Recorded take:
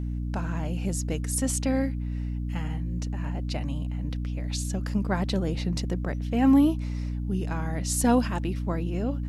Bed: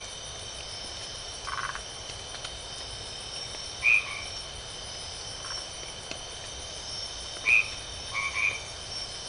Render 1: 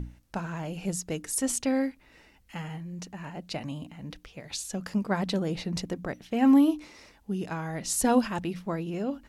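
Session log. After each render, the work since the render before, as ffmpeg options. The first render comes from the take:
-af "bandreject=f=60:t=h:w=6,bandreject=f=120:t=h:w=6,bandreject=f=180:t=h:w=6,bandreject=f=240:t=h:w=6,bandreject=f=300:t=h:w=6"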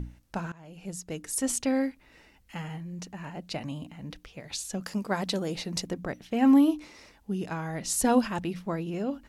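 -filter_complex "[0:a]asettb=1/sr,asplit=3[a][b][c];[a]atrim=end=4.824[d];[b]atrim=start=4.82:end=5.87,asetpts=PTS-STARTPTS,afade=t=in:d=0.004:c=qsin,afade=t=out:st=1.046:d=0.004:c=qsin,bass=f=250:g=-5,treble=f=4k:g=6[e];[c]atrim=start=5.866[f];[d][e]acrossfade=d=0.004:c1=hsin:c2=qsin[g];[g][f]acrossfade=d=0.004:c1=qsin:c2=hsin,asplit=2[h][i];[h]atrim=end=0.52,asetpts=PTS-STARTPTS,afade=t=out:st=0.516:d=0.004:c=hsin:silence=0.0944061[j];[i]atrim=start=0.52,asetpts=PTS-STARTPTS,afade=t=in:d=0.97:silence=0.0944061[k];[j][k]concat=n=2:v=0:a=1"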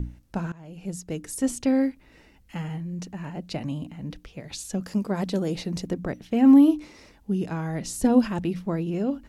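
-filter_complex "[0:a]acrossover=split=490[a][b];[a]acontrast=48[c];[b]alimiter=level_in=1.5dB:limit=-24dB:level=0:latency=1:release=50,volume=-1.5dB[d];[c][d]amix=inputs=2:normalize=0"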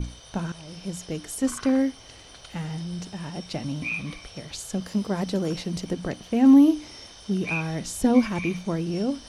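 -filter_complex "[1:a]volume=-8.5dB[a];[0:a][a]amix=inputs=2:normalize=0"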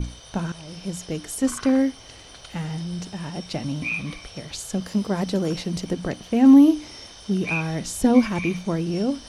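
-af "volume=2.5dB"

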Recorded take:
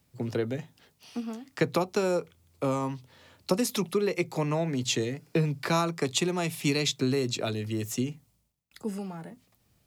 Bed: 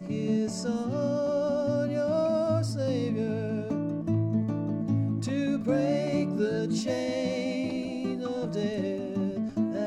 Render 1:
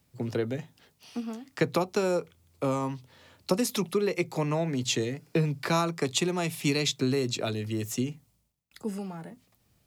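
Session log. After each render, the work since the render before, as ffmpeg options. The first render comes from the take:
-af anull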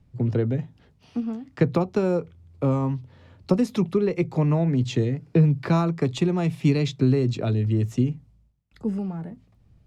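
-af "aemphasis=mode=reproduction:type=riaa"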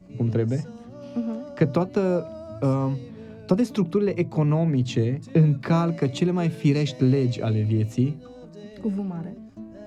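-filter_complex "[1:a]volume=-12dB[a];[0:a][a]amix=inputs=2:normalize=0"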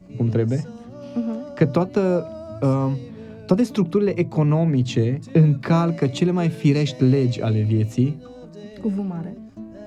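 -af "volume=3dB"

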